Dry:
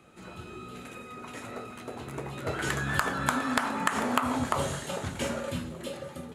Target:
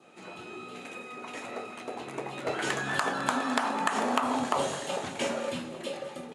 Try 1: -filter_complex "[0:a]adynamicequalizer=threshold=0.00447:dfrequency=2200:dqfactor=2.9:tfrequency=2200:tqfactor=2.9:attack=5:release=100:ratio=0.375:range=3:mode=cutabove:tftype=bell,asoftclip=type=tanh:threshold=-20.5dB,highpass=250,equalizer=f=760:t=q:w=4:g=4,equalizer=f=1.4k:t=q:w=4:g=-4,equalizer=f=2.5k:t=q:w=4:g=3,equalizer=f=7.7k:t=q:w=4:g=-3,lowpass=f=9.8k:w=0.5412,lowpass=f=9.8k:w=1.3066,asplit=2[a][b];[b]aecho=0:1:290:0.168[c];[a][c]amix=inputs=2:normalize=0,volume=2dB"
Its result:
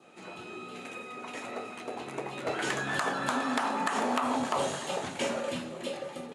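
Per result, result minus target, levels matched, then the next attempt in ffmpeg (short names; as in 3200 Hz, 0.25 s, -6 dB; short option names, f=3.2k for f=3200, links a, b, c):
echo 79 ms late; soft clip: distortion +7 dB
-filter_complex "[0:a]adynamicequalizer=threshold=0.00447:dfrequency=2200:dqfactor=2.9:tfrequency=2200:tqfactor=2.9:attack=5:release=100:ratio=0.375:range=3:mode=cutabove:tftype=bell,asoftclip=type=tanh:threshold=-20.5dB,highpass=250,equalizer=f=760:t=q:w=4:g=4,equalizer=f=1.4k:t=q:w=4:g=-4,equalizer=f=2.5k:t=q:w=4:g=3,equalizer=f=7.7k:t=q:w=4:g=-3,lowpass=f=9.8k:w=0.5412,lowpass=f=9.8k:w=1.3066,asplit=2[a][b];[b]aecho=0:1:211:0.168[c];[a][c]amix=inputs=2:normalize=0,volume=2dB"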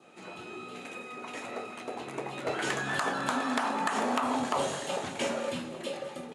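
soft clip: distortion +7 dB
-filter_complex "[0:a]adynamicequalizer=threshold=0.00447:dfrequency=2200:dqfactor=2.9:tfrequency=2200:tqfactor=2.9:attack=5:release=100:ratio=0.375:range=3:mode=cutabove:tftype=bell,asoftclip=type=tanh:threshold=-13dB,highpass=250,equalizer=f=760:t=q:w=4:g=4,equalizer=f=1.4k:t=q:w=4:g=-4,equalizer=f=2.5k:t=q:w=4:g=3,equalizer=f=7.7k:t=q:w=4:g=-3,lowpass=f=9.8k:w=0.5412,lowpass=f=9.8k:w=1.3066,asplit=2[a][b];[b]aecho=0:1:211:0.168[c];[a][c]amix=inputs=2:normalize=0,volume=2dB"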